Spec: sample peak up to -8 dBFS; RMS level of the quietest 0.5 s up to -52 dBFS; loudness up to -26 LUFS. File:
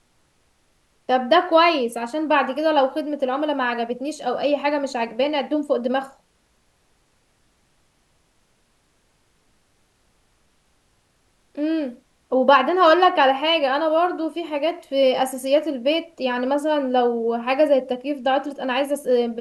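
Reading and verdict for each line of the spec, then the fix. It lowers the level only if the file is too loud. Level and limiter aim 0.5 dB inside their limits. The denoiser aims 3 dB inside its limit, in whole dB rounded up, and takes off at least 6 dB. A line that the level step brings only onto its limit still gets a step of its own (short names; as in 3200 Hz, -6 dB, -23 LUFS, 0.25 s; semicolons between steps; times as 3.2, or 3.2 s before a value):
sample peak -2.5 dBFS: fail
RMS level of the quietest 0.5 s -64 dBFS: OK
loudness -20.5 LUFS: fail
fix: gain -6 dB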